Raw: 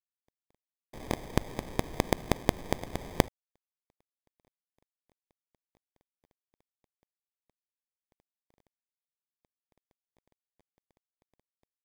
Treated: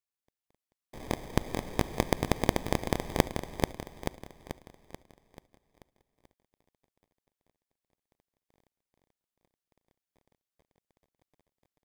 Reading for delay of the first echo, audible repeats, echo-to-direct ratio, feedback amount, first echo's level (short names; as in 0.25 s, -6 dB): 0.436 s, 6, -2.5 dB, 50%, -3.5 dB